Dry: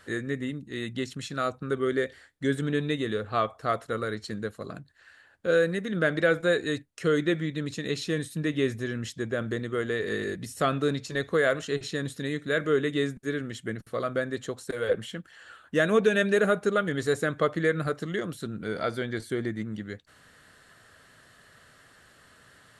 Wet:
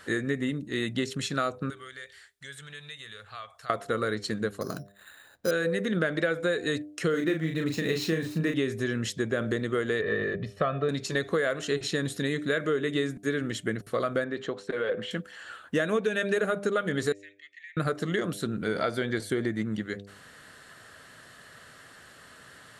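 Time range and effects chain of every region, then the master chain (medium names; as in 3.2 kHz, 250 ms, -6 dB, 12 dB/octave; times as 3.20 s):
1.70–3.70 s: amplifier tone stack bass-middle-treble 10-0-10 + compression 2:1, threshold -51 dBFS
4.61–5.51 s: treble shelf 3.4 kHz -10.5 dB + careless resampling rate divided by 8×, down none, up hold
7.10–8.54 s: median filter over 5 samples + peaking EQ 3.4 kHz -6 dB 0.24 oct + doubling 37 ms -5 dB
10.01–10.89 s: distance through air 360 m + comb 1.7 ms, depth 55%
14.24–15.11 s: low-pass 3.4 kHz + peaking EQ 86 Hz -13 dB 0.95 oct + compression 2:1, threshold -32 dBFS
17.12–17.77 s: rippled Chebyshev high-pass 1.8 kHz, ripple 9 dB + tape spacing loss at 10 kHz 29 dB + compression, threshold -47 dBFS
whole clip: bass shelf 72 Hz -9 dB; de-hum 100 Hz, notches 7; compression, threshold -29 dBFS; trim +5.5 dB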